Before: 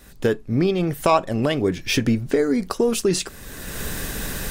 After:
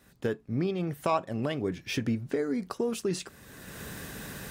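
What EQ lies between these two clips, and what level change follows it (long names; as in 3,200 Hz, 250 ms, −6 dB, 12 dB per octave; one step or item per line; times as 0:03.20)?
high-pass filter 110 Hz 12 dB per octave
parametric band 400 Hz −5.5 dB 2.9 octaves
high-shelf EQ 2,000 Hz −9.5 dB
−4.5 dB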